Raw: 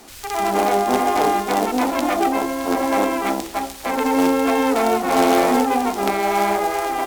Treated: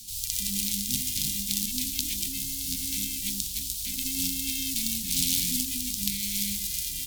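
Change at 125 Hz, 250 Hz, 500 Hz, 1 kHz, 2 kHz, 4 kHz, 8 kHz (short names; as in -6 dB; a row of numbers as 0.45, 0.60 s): -2.5 dB, -16.0 dB, under -40 dB, under -40 dB, -16.5 dB, +1.5 dB, +5.5 dB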